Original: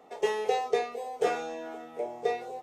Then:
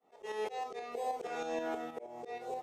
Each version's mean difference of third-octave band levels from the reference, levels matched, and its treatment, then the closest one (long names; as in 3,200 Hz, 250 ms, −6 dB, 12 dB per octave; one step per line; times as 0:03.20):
6.0 dB: downward expander −44 dBFS
volume swells 396 ms
shaped tremolo saw up 6.3 Hz, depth 50%
level +5.5 dB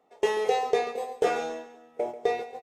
3.5 dB: noise gate −36 dBFS, range −18 dB
in parallel at +0.5 dB: downward compressor, threshold −34 dBFS, peak gain reduction 13 dB
on the sum: repeating echo 138 ms, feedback 32%, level −14 dB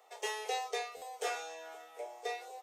9.0 dB: Bessel high-pass filter 700 Hz, order 6
high-shelf EQ 3,800 Hz +10.5 dB
buffer that repeats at 0:00.96, samples 512, times 4
level −5 dB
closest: second